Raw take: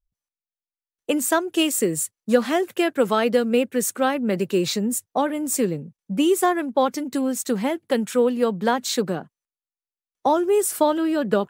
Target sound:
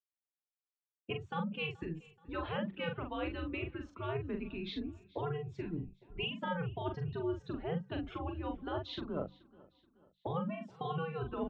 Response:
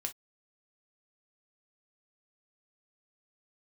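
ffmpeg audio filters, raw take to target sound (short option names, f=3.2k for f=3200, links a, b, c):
-filter_complex "[0:a]afftfilt=real='re*lt(hypot(re,im),0.794)':imag='im*lt(hypot(re,im),0.794)':win_size=1024:overlap=0.75,afftdn=nr=16:nf=-36,equalizer=f=2k:t=o:w=0.82:g=-7,bandreject=f=50:t=h:w=6,bandreject=f=100:t=h:w=6,bandreject=f=150:t=h:w=6,bandreject=f=200:t=h:w=6,bandreject=f=250:t=h:w=6,bandreject=f=300:t=h:w=6,bandreject=f=350:t=h:w=6,areverse,acompressor=threshold=-35dB:ratio=16,areverse,asplit=2[a][b];[b]adelay=42,volume=-5.5dB[c];[a][c]amix=inputs=2:normalize=0,aecho=1:1:428|856|1284:0.0708|0.0333|0.0156,highpass=f=290:t=q:w=0.5412,highpass=f=290:t=q:w=1.307,lowpass=f=3.6k:t=q:w=0.5176,lowpass=f=3.6k:t=q:w=0.7071,lowpass=f=3.6k:t=q:w=1.932,afreqshift=-160,volume=2dB"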